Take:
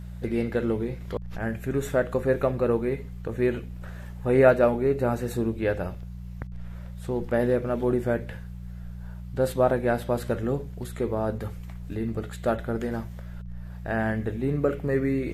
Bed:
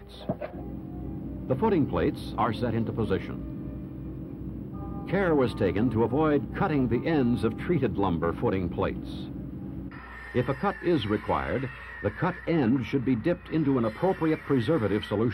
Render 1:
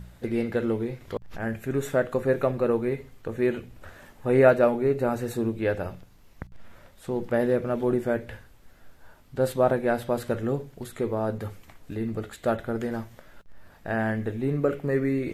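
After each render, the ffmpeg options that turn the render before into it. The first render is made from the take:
ffmpeg -i in.wav -af "bandreject=frequency=60:width_type=h:width=4,bandreject=frequency=120:width_type=h:width=4,bandreject=frequency=180:width_type=h:width=4" out.wav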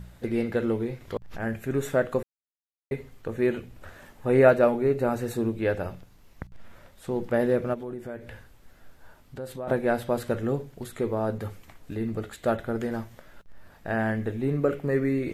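ffmpeg -i in.wav -filter_complex "[0:a]asplit=3[link_01][link_02][link_03];[link_01]afade=type=out:start_time=7.73:duration=0.02[link_04];[link_02]acompressor=threshold=-38dB:ratio=2.5:attack=3.2:release=140:knee=1:detection=peak,afade=type=in:start_time=7.73:duration=0.02,afade=type=out:start_time=9.67:duration=0.02[link_05];[link_03]afade=type=in:start_time=9.67:duration=0.02[link_06];[link_04][link_05][link_06]amix=inputs=3:normalize=0,asplit=3[link_07][link_08][link_09];[link_07]atrim=end=2.23,asetpts=PTS-STARTPTS,afade=type=out:start_time=2.226:duration=0.004:curve=hsin[link_10];[link_08]atrim=start=2.23:end=2.91,asetpts=PTS-STARTPTS,volume=0[link_11];[link_09]atrim=start=2.91,asetpts=PTS-STARTPTS,afade=type=in:duration=0.004:curve=hsin[link_12];[link_10][link_11][link_12]concat=n=3:v=0:a=1" out.wav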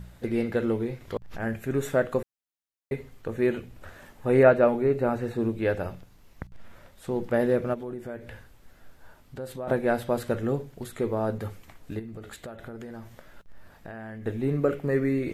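ffmpeg -i in.wav -filter_complex "[0:a]asettb=1/sr,asplit=3[link_01][link_02][link_03];[link_01]atrim=end=4.434[link_04];[link_02]atrim=start=4.43:end=5.49,asetpts=PTS-STARTPTS,afade=type=in:duration=0.004:curve=qsin,afade=type=out:start_time=1.056:duration=0.004:curve=qsin,acrossover=split=3400[link_05][link_06];[link_06]acompressor=threshold=-59dB:ratio=4:attack=1:release=60[link_07];[link_05][link_07]amix=inputs=2:normalize=0[link_08];[link_03]atrim=start=5.486[link_09];[link_04][link_08]acrossfade=duration=0.004:curve1=hsin:curve2=qsin[link_10];[link_10][link_09]acrossfade=duration=0.004:curve1=qsin:curve2=hsin,asettb=1/sr,asplit=3[link_11][link_12][link_13];[link_11]atrim=end=11.994[link_14];[link_12]atrim=start=11.99:end=14.26,asetpts=PTS-STARTPTS,afade=type=in:duration=0.004:curve=qsin,afade=type=out:start_time=2.266:duration=0.004:curve=qsin,acompressor=threshold=-36dB:ratio=10:attack=3.2:release=140:knee=1:detection=peak[link_15];[link_13]atrim=start=14.256[link_16];[link_14][link_15]acrossfade=duration=0.004:curve1=hsin:curve2=qsin[link_17];[link_17][link_16]acrossfade=duration=0.004:curve1=qsin:curve2=hsin" out.wav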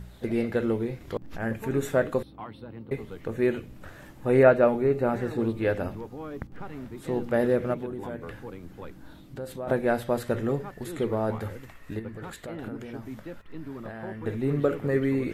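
ffmpeg -i in.wav -i bed.wav -filter_complex "[1:a]volume=-14.5dB[link_01];[0:a][link_01]amix=inputs=2:normalize=0" out.wav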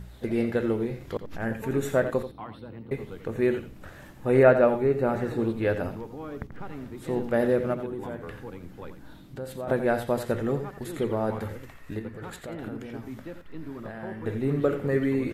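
ffmpeg -i in.wav -af "aecho=1:1:86:0.282" out.wav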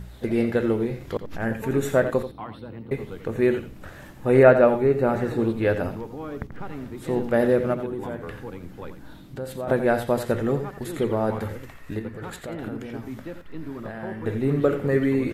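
ffmpeg -i in.wav -af "volume=3.5dB" out.wav

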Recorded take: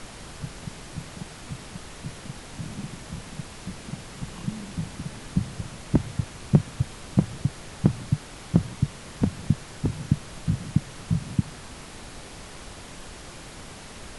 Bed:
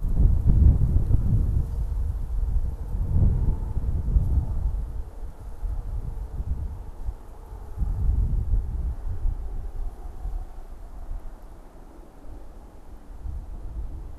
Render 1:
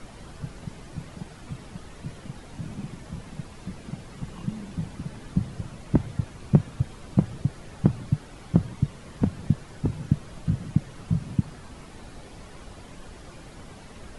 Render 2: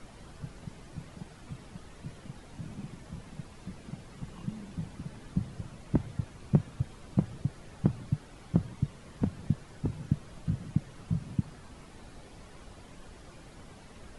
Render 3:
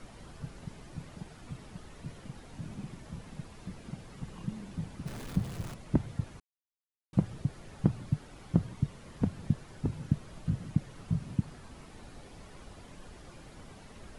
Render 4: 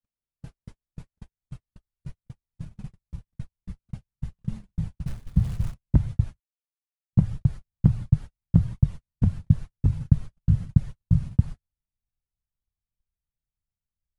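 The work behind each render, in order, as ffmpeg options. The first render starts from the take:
ffmpeg -i in.wav -af "afftdn=noise_reduction=9:noise_floor=-43" out.wav
ffmpeg -i in.wav -af "volume=-6dB" out.wav
ffmpeg -i in.wav -filter_complex "[0:a]asettb=1/sr,asplit=3[link_01][link_02][link_03];[link_01]atrim=end=5.064[link_04];[link_02]atrim=start=5.06:end=5.74,asetpts=PTS-STARTPTS,afade=type=in:duration=0.004:curve=qsin,afade=type=out:start_time=0.676:duration=0.004:curve=qsin,aeval=exprs='val(0)+0.5*0.00944*sgn(val(0))':channel_layout=same[link_05];[link_03]atrim=start=5.736[link_06];[link_04][link_05]acrossfade=duration=0.004:curve1=hsin:curve2=qsin[link_07];[link_07][link_06]acrossfade=duration=0.004:curve1=qsin:curve2=hsin,asplit=3[link_08][link_09][link_10];[link_08]atrim=end=6.4,asetpts=PTS-STARTPTS,afade=type=out:start_time=6.396:duration=0.004:curve=hsin[link_11];[link_09]atrim=start=6.4:end=7.13,asetpts=PTS-STARTPTS,volume=0[link_12];[link_10]atrim=start=7.13,asetpts=PTS-STARTPTS,afade=type=in:duration=0.004:curve=hsin[link_13];[link_11][link_12][link_13]concat=n=3:v=0:a=1" out.wav
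ffmpeg -i in.wav -af "agate=range=-54dB:threshold=-39dB:ratio=16:detection=peak,asubboost=boost=9:cutoff=110" out.wav

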